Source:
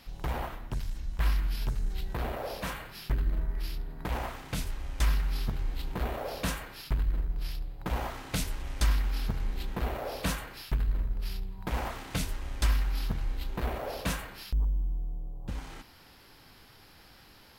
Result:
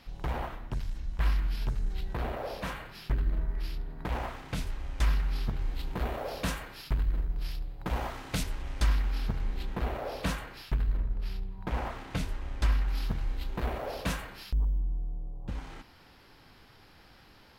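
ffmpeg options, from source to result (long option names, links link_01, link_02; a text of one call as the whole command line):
ffmpeg -i in.wav -af "asetnsamples=nb_out_samples=441:pad=0,asendcmd='5.61 lowpass f 8200;8.43 lowpass f 4400;10.97 lowpass f 2500;12.88 lowpass f 6700;14.79 lowpass f 3700',lowpass=frequency=4300:poles=1" out.wav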